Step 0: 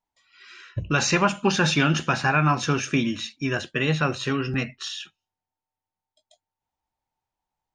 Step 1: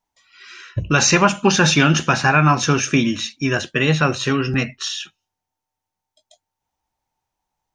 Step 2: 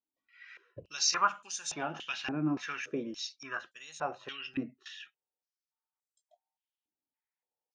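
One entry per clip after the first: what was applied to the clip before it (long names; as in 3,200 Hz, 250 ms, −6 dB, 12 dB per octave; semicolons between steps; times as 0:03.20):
parametric band 6,000 Hz +5.5 dB 0.26 octaves; level +6 dB
band-pass on a step sequencer 3.5 Hz 300–8,000 Hz; level −6 dB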